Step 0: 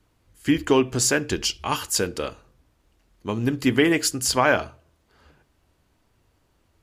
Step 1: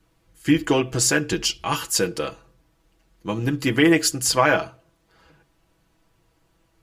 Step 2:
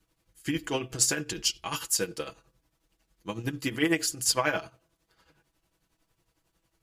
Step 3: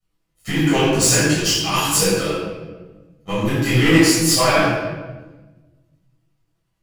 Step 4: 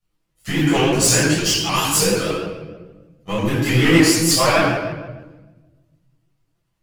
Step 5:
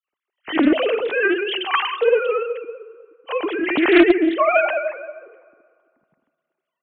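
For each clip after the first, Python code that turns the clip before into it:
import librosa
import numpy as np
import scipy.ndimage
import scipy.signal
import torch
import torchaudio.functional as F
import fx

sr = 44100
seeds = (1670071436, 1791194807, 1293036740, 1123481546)

y1 = x + 0.68 * np.pad(x, (int(6.1 * sr / 1000.0), 0))[:len(x)]
y2 = fx.high_shelf(y1, sr, hz=3100.0, db=7.5)
y2 = fx.tremolo_shape(y2, sr, shape='triangle', hz=11.0, depth_pct=75)
y2 = y2 * librosa.db_to_amplitude(-7.0)
y3 = fx.leveller(y2, sr, passes=3)
y3 = fx.room_shoebox(y3, sr, seeds[0], volume_m3=840.0, walls='mixed', distance_m=6.4)
y3 = fx.detune_double(y3, sr, cents=35)
y3 = y3 * librosa.db_to_amplitude(-4.5)
y4 = fx.vibrato_shape(y3, sr, shape='saw_up', rate_hz=6.5, depth_cents=100.0)
y5 = fx.sine_speech(y4, sr)
y5 = fx.rev_fdn(y5, sr, rt60_s=2.3, lf_ratio=0.9, hf_ratio=0.6, size_ms=39.0, drr_db=18.5)
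y5 = fx.doppler_dist(y5, sr, depth_ms=0.24)
y5 = y5 * librosa.db_to_amplitude(-1.0)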